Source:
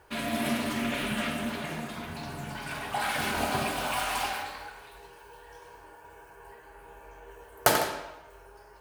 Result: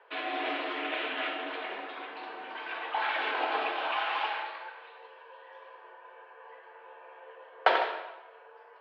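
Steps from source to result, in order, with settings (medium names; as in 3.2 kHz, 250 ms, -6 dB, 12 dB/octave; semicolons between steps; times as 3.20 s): mistuned SSB +52 Hz 330–3500 Hz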